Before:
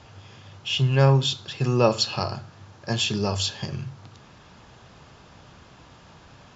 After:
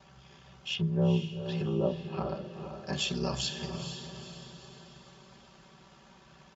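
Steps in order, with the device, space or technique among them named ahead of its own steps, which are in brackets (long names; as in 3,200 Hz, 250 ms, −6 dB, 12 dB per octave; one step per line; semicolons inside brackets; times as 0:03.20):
ring-modulated robot voice (ring modulation 33 Hz; comb filter 5.2 ms, depth 87%)
0:00.73–0:02.93: treble cut that deepens with the level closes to 500 Hz, closed at −19 dBFS
high-pass filter 55 Hz
feedback delay with all-pass diffusion 468 ms, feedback 47%, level −8 dB
level −7 dB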